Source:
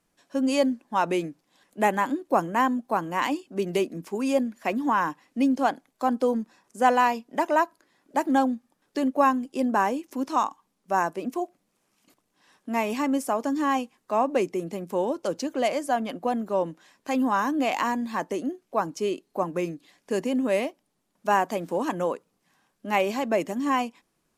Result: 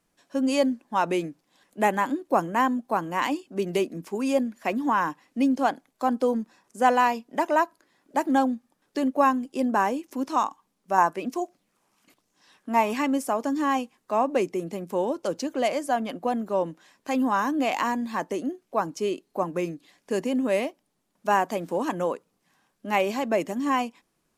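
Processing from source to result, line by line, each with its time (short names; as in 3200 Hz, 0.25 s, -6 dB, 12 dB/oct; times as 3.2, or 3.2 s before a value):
10.98–13.12 LFO bell 1.1 Hz 880–6800 Hz +8 dB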